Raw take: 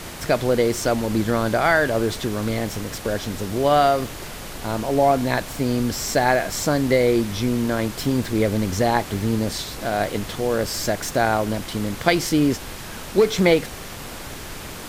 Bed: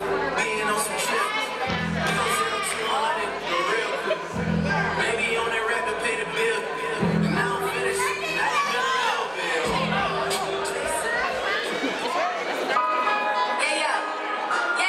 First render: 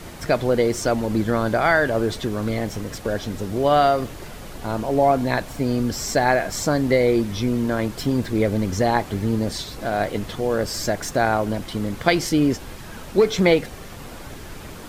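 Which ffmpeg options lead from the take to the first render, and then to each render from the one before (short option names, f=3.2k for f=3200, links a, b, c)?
-af "afftdn=nr=7:nf=-35"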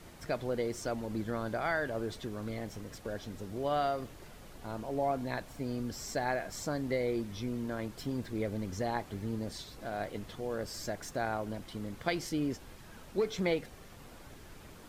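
-af "volume=-14.5dB"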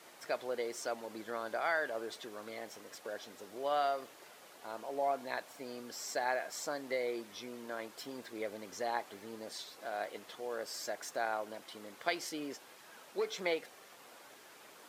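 -af "highpass=500"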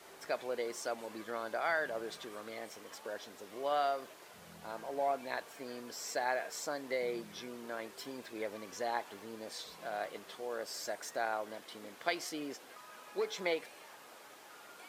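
-filter_complex "[1:a]volume=-34dB[a];[0:a][a]amix=inputs=2:normalize=0"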